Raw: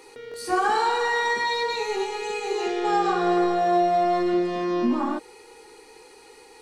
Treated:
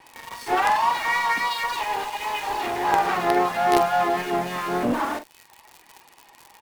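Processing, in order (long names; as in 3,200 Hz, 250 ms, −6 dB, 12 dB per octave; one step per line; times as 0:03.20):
lower of the sound and its delayed copy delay 1.1 ms
reverb reduction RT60 0.92 s
three-way crossover with the lows and the highs turned down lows −20 dB, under 160 Hz, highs −15 dB, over 3,000 Hz
pitch-shifted copies added −5 semitones −14 dB, +3 semitones −7 dB, +4 semitones −16 dB
surface crackle 92 per second −40 dBFS
high-shelf EQ 2,200 Hz +3.5 dB
in parallel at −8 dB: log-companded quantiser 2 bits
on the sum: pitch vibrato 3.6 Hz 33 cents
double-tracking delay 45 ms −10 dB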